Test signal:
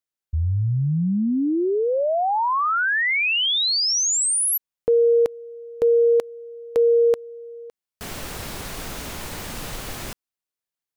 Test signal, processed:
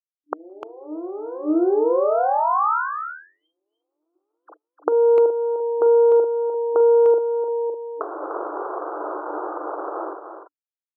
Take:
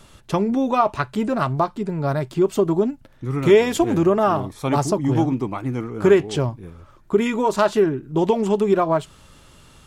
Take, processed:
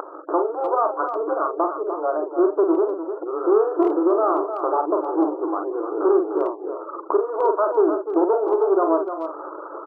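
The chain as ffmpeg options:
-filter_complex "[0:a]aeval=exprs='if(lt(val(0),0),0.251*val(0),val(0))':c=same,adynamicequalizer=threshold=0.0158:dfrequency=790:dqfactor=0.83:tfrequency=790:tqfactor=0.83:attack=5:release=100:ratio=0.4:range=2:mode=cutabove:tftype=bell,aeval=exprs='0.596*(cos(1*acos(clip(val(0)/0.596,-1,1)))-cos(1*PI/2))+0.188*(cos(5*acos(clip(val(0)/0.596,-1,1)))-cos(5*PI/2))+0.00944*(cos(7*acos(clip(val(0)/0.596,-1,1)))-cos(7*PI/2))':c=same,acrusher=bits=8:mix=0:aa=0.000001,asplit=2[a][b];[b]adelay=43,volume=-5dB[c];[a][c]amix=inputs=2:normalize=0,acompressor=mode=upward:threshold=-24dB:ratio=4:attack=53:release=249:knee=2.83:detection=peak,afftfilt=real='re*gte(hypot(re,im),0.02)':imag='im*gte(hypot(re,im),0.02)':win_size=1024:overlap=0.75,acompressor=threshold=-18dB:ratio=2.5:attack=1.3:release=811:knee=1:detection=peak,asuperstop=centerf=2500:order=12:qfactor=0.8,afftfilt=real='re*between(b*sr/4096,300,3200)':imag='im*between(b*sr/4096,300,3200)':win_size=4096:overlap=0.75,asplit=2[d][e];[e]adelay=300,highpass=300,lowpass=3.4k,asoftclip=type=hard:threshold=-16dB,volume=-8dB[f];[d][f]amix=inputs=2:normalize=0,volume=5dB"

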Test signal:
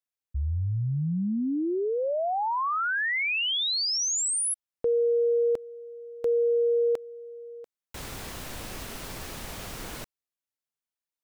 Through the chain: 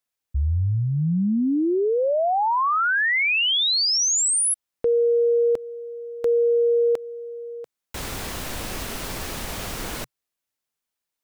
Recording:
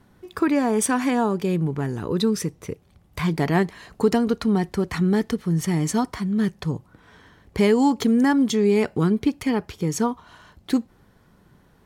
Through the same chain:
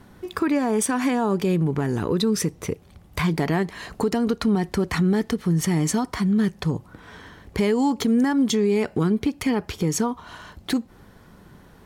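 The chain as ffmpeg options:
-af "equalizer=f=130:t=o:w=0.36:g=-3,acompressor=threshold=-23dB:ratio=6:attack=0.13:release=393:knee=6:detection=peak,volume=7.5dB"

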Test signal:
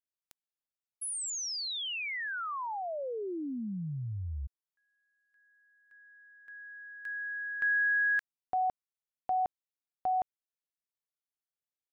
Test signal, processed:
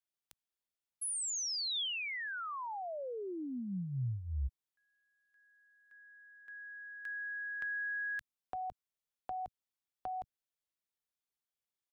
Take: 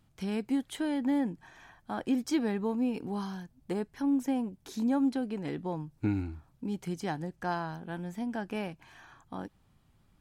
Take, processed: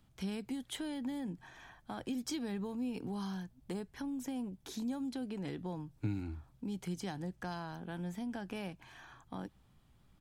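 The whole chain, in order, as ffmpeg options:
-filter_complex "[0:a]equalizer=f=3.4k:t=o:w=0.28:g=3,acrossover=split=150|3400[a][b][c];[a]asplit=2[d][e];[e]adelay=16,volume=-3dB[f];[d][f]amix=inputs=2:normalize=0[g];[b]acompressor=threshold=-38dB:ratio=6:attack=9.5:release=93:knee=6:detection=rms[h];[g][h][c]amix=inputs=3:normalize=0,volume=-1dB"

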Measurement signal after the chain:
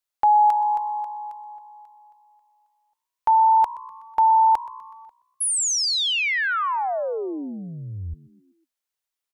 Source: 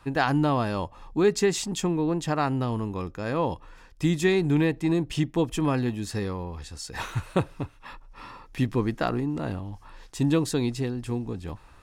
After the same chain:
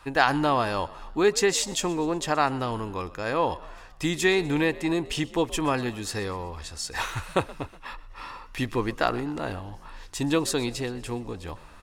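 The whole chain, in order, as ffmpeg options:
-filter_complex "[0:a]equalizer=f=160:w=0.58:g=-12,asplit=5[a][b][c][d][e];[b]adelay=124,afreqshift=62,volume=-20dB[f];[c]adelay=248,afreqshift=124,volume=-25.5dB[g];[d]adelay=372,afreqshift=186,volume=-31dB[h];[e]adelay=496,afreqshift=248,volume=-36.5dB[i];[a][f][g][h][i]amix=inputs=5:normalize=0,volume=5dB"

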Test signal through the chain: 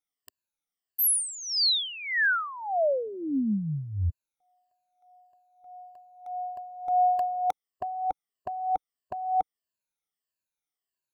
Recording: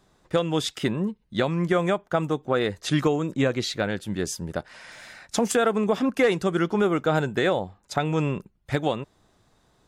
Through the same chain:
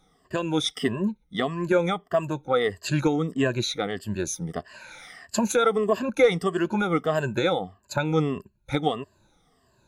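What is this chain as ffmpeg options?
-af "afftfilt=real='re*pow(10,18/40*sin(2*PI*(1.4*log(max(b,1)*sr/1024/100)/log(2)-(-1.6)*(pts-256)/sr)))':imag='im*pow(10,18/40*sin(2*PI*(1.4*log(max(b,1)*sr/1024/100)/log(2)-(-1.6)*(pts-256)/sr)))':win_size=1024:overlap=0.75,volume=-4dB"

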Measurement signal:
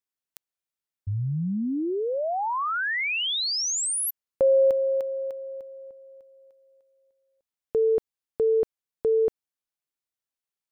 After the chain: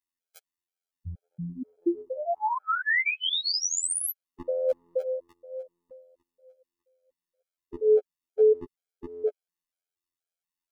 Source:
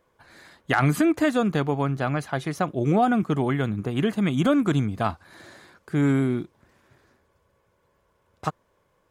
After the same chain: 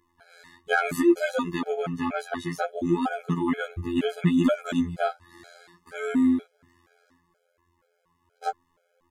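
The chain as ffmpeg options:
-af "afftfilt=real='hypot(re,im)*cos(PI*b)':imag='0':win_size=2048:overlap=0.75,flanger=delay=2.9:depth=6.2:regen=7:speed=0.65:shape=sinusoidal,afftfilt=real='re*gt(sin(2*PI*2.1*pts/sr)*(1-2*mod(floor(b*sr/1024/430),2)),0)':imag='im*gt(sin(2*PI*2.1*pts/sr)*(1-2*mod(floor(b*sr/1024/430),2)),0)':win_size=1024:overlap=0.75,volume=7.5dB"

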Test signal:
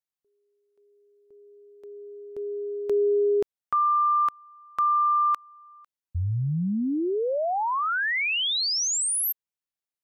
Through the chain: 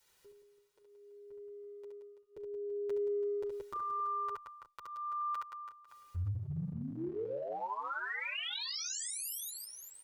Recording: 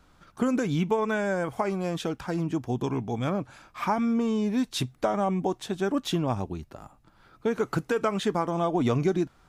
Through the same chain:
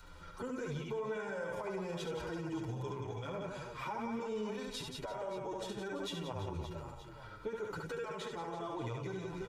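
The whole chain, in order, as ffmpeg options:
-filter_complex "[0:a]adynamicequalizer=threshold=0.0126:dfrequency=290:dqfactor=1.1:tfrequency=290:tqfactor=1.1:attack=5:release=100:ratio=0.375:range=3:mode=cutabove:tftype=bell,acompressor=mode=upward:threshold=-38dB:ratio=2.5:attack=1.9:release=39:knee=2.83:detection=peak,highshelf=f=9.8k:g=-7.5,aecho=1:1:2.1:0.57,asplit=2[a][b];[b]aecho=0:1:70|175|332.5|568.8|923.1:0.631|0.398|0.251|0.158|0.1[c];[a][c]amix=inputs=2:normalize=0,acompressor=threshold=-27dB:ratio=6:attack=0.14:release=57:knee=1:detection=rms,asplit=2[d][e];[e]adelay=7.4,afreqshift=-0.65[f];[d][f]amix=inputs=2:normalize=1,volume=-4.5dB"

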